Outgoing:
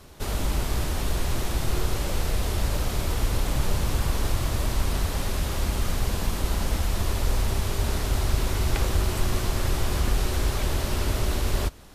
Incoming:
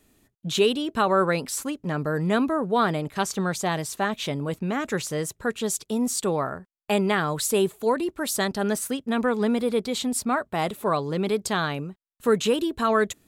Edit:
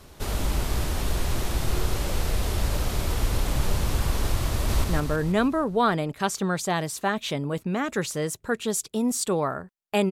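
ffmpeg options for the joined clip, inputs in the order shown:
ffmpeg -i cue0.wav -i cue1.wav -filter_complex "[0:a]apad=whole_dur=10.11,atrim=end=10.11,atrim=end=4.842[link_01];[1:a]atrim=start=1.798:end=7.07[link_02];[link_01][link_02]acrossfade=duration=0.004:curve1=hsin:curve2=hsin,asplit=2[link_03][link_04];[link_04]afade=type=in:start_time=4.52:duration=0.01,afade=type=out:start_time=4.84:duration=0.01,aecho=0:1:160|320|480|640|800|960|1120|1280:0.707946|0.38937|0.214154|0.117784|0.0647815|0.0356298|0.0195964|0.010778[link_05];[link_03][link_05]amix=inputs=2:normalize=0" out.wav

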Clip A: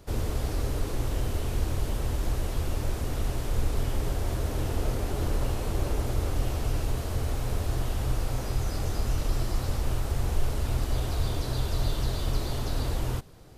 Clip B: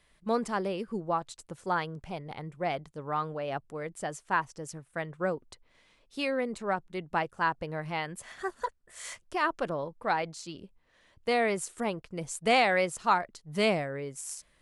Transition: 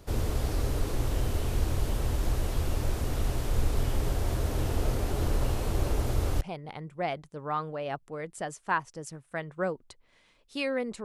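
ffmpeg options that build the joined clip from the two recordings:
ffmpeg -i cue0.wav -i cue1.wav -filter_complex "[0:a]apad=whole_dur=11.04,atrim=end=11.04,atrim=end=6.412[link_01];[1:a]atrim=start=2.028:end=6.66[link_02];[link_01][link_02]acrossfade=duration=0.004:curve1=hsin:curve2=hsin" out.wav

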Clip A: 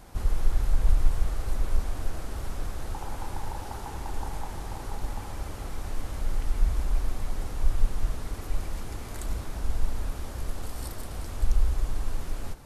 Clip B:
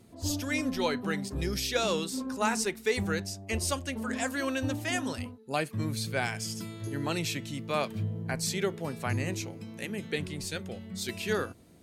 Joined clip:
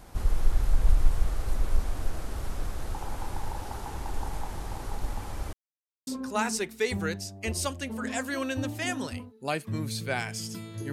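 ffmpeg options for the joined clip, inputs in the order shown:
ffmpeg -i cue0.wav -i cue1.wav -filter_complex "[0:a]apad=whole_dur=10.92,atrim=end=10.92,asplit=2[link_01][link_02];[link_01]atrim=end=5.53,asetpts=PTS-STARTPTS,afade=type=out:start_time=5.526:duration=0.004:curve=hsin[link_03];[link_02]atrim=start=5.53:end=6.07,asetpts=PTS-STARTPTS,volume=0[link_04];[1:a]atrim=start=2.13:end=6.98,asetpts=PTS-STARTPTS,afade=type=in:duration=0.004:curve=hsin[link_05];[link_03][link_04][link_05]concat=n=3:v=0:a=1" out.wav

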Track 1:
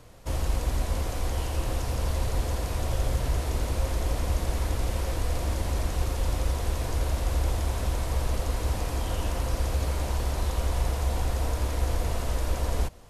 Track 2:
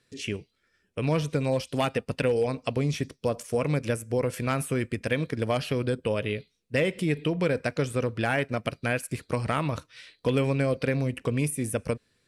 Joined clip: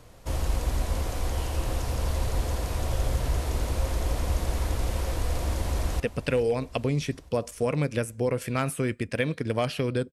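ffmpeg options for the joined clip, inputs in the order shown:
ffmpeg -i cue0.wav -i cue1.wav -filter_complex "[0:a]apad=whole_dur=10.12,atrim=end=10.12,atrim=end=6.002[link_01];[1:a]atrim=start=1.918:end=6.04[link_02];[link_01][link_02]acrossfade=duration=0.004:curve1=hsin:curve2=hsin,asplit=2[link_03][link_04];[link_04]afade=type=in:start_time=5.43:duration=0.01,afade=type=out:start_time=6:duration=0.01,aecho=0:1:430|860|1290|1720|2150|2580:0.149624|0.0897741|0.0538645|0.0323187|0.0193912|0.0116347[link_05];[link_03][link_05]amix=inputs=2:normalize=0" out.wav

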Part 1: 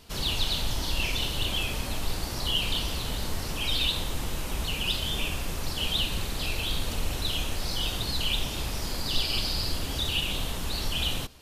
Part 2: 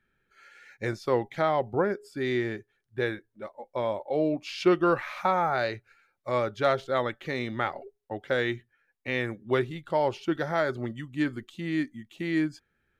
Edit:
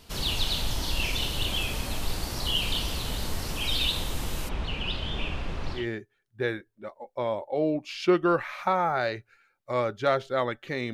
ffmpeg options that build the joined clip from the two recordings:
ffmpeg -i cue0.wav -i cue1.wav -filter_complex "[0:a]asplit=3[link_01][link_02][link_03];[link_01]afade=type=out:start_time=4.48:duration=0.02[link_04];[link_02]lowpass=2800,afade=type=in:start_time=4.48:duration=0.02,afade=type=out:start_time=5.87:duration=0.02[link_05];[link_03]afade=type=in:start_time=5.87:duration=0.02[link_06];[link_04][link_05][link_06]amix=inputs=3:normalize=0,apad=whole_dur=10.93,atrim=end=10.93,atrim=end=5.87,asetpts=PTS-STARTPTS[link_07];[1:a]atrim=start=2.31:end=7.51,asetpts=PTS-STARTPTS[link_08];[link_07][link_08]acrossfade=duration=0.14:curve1=tri:curve2=tri" out.wav

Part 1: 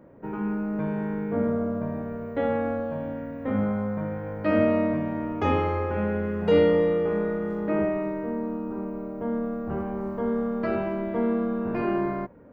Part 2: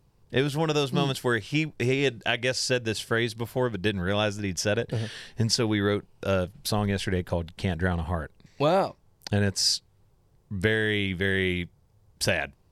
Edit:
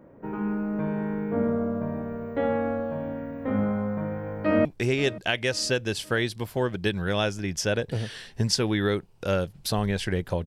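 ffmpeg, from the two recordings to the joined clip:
ffmpeg -i cue0.wav -i cue1.wav -filter_complex "[0:a]apad=whole_dur=10.46,atrim=end=10.46,atrim=end=4.652[link_01];[1:a]atrim=start=1.648:end=7.46[link_02];[link_01][link_02]acrossfade=duration=0.004:curve1=hsin:curve2=hsin,asplit=2[link_03][link_04];[link_04]afade=type=in:start_time=4.37:duration=0.01,afade=type=out:start_time=4.65:duration=0.01,aecho=0:1:530|1060|1590|2120|2650:0.125893|0.0692409|0.0380825|0.0209454|0.01152[link_05];[link_03][link_05]amix=inputs=2:normalize=0" out.wav

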